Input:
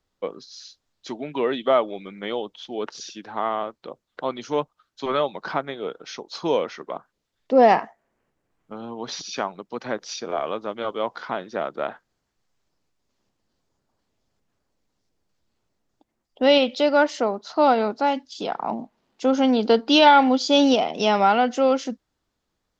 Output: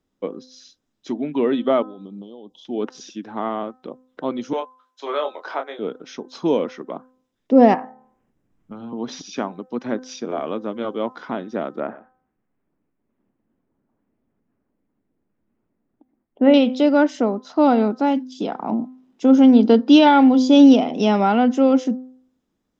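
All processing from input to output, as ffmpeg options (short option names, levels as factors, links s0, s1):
-filter_complex "[0:a]asettb=1/sr,asplit=3[s0][s1][s2];[s0]atrim=end=1.824[s3];[s1]atrim=start=1.82:end=2.65,asetpts=PTS-STARTPTS,afade=t=in:d=0.004:c=qsin,afade=t=out:st=0.826:d=0.004:c=qsin,acompressor=threshold=0.0126:ratio=12:attack=3.2:release=140:knee=1:detection=peak,asuperstop=centerf=1800:order=8:qfactor=0.92[s4];[s2]atrim=start=2.646[s5];[s3][s4]acrossfade=d=0.004:c1=hsin:c2=qsin[s6];[s6][s5]acrossfade=d=0.004:c1=qsin:c2=hsin,asettb=1/sr,asplit=3[s7][s8][s9];[s7]atrim=end=4.534[s10];[s8]atrim=start=4.53:end=5.79,asetpts=PTS-STARTPTS,afade=t=in:d=0.004:c=qsin,afade=t=out:st=1.256:d=0.004:c=qsin,highpass=f=470:w=0.5412,highpass=f=470:w=1.3066,asplit=2[s11][s12];[s12]adelay=26,volume=0.501[s13];[s11][s13]amix=inputs=2:normalize=0,atrim=end_sample=55566[s14];[s9]atrim=start=5.786[s15];[s10][s14]acrossfade=d=0.004:c1=hsin:c2=qsin[s16];[s16][s15]acrossfade=d=0.004:c1=qsin:c2=hsin,asettb=1/sr,asplit=3[s17][s18][s19];[s17]atrim=end=7.744[s20];[s18]atrim=start=7.74:end=8.93,asetpts=PTS-STARTPTS,afade=t=in:d=0.004:c=qsin,afade=t=out:st=1.186:d=0.004:c=qsin,bandreject=f=73.38:t=h:w=4,bandreject=f=146.76:t=h:w=4,bandreject=f=220.14:t=h:w=4,bandreject=f=293.52:t=h:w=4,bandreject=f=366.9:t=h:w=4,bandreject=f=440.28:t=h:w=4,bandreject=f=513.66:t=h:w=4,bandreject=f=587.04:t=h:w=4,bandreject=f=660.42:t=h:w=4,bandreject=f=733.8:t=h:w=4,bandreject=f=807.18:t=h:w=4,bandreject=f=880.56:t=h:w=4,bandreject=f=953.94:t=h:w=4,bandreject=f=1027.32:t=h:w=4,asubboost=boost=9.5:cutoff=170,acrossover=split=590|2300[s21][s22][s23];[s21]acompressor=threshold=0.00708:ratio=4[s24];[s22]acompressor=threshold=0.0501:ratio=4[s25];[s23]acompressor=threshold=0.00126:ratio=4[s26];[s24][s25][s26]amix=inputs=3:normalize=0[s27];[s19]atrim=start=8.926[s28];[s20][s27]acrossfade=d=0.004:c1=hsin:c2=qsin[s29];[s29][s28]acrossfade=d=0.004:c1=qsin:c2=hsin,asettb=1/sr,asplit=3[s30][s31][s32];[s30]atrim=end=11.804[s33];[s31]atrim=start=11.8:end=16.54,asetpts=PTS-STARTPTS,afade=t=in:d=0.004:c=qsin,afade=t=out:st=4.736:d=0.004:c=qsin,lowpass=f=2300:w=0.5412,lowpass=f=2300:w=1.3066,aecho=1:1:121:0.141,atrim=end_sample=209034[s34];[s32]atrim=start=16.536[s35];[s33][s34]acrossfade=d=0.004:c1=hsin:c2=qsin[s36];[s36][s35]acrossfade=d=0.004:c1=qsin:c2=hsin,equalizer=f=250:w=1:g=13.5,bandreject=f=4400:w=7.9,bandreject=f=256.3:t=h:w=4,bandreject=f=512.6:t=h:w=4,bandreject=f=768.9:t=h:w=4,bandreject=f=1025.2:t=h:w=4,bandreject=f=1281.5:t=h:w=4,bandreject=f=1537.8:t=h:w=4,bandreject=f=1794.1:t=h:w=4,volume=0.708"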